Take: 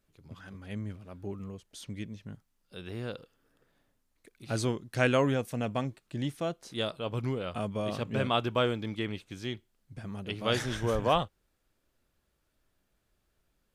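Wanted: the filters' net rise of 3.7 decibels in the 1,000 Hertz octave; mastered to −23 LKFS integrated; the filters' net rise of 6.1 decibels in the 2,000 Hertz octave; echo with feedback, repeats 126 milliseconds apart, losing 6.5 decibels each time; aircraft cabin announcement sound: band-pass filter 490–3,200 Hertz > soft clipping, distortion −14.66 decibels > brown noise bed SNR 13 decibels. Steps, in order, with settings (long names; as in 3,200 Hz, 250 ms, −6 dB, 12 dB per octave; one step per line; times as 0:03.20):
band-pass filter 490–3,200 Hz
parametric band 1,000 Hz +3 dB
parametric band 2,000 Hz +8 dB
repeating echo 126 ms, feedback 47%, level −6.5 dB
soft clipping −16.5 dBFS
brown noise bed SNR 13 dB
level +9 dB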